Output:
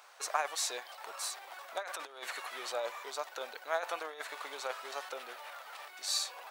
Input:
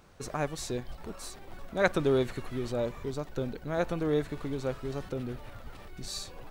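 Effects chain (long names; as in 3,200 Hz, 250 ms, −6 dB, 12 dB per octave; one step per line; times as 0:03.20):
compressor whose output falls as the input rises −30 dBFS, ratio −0.5
high-pass filter 700 Hz 24 dB per octave
level +4 dB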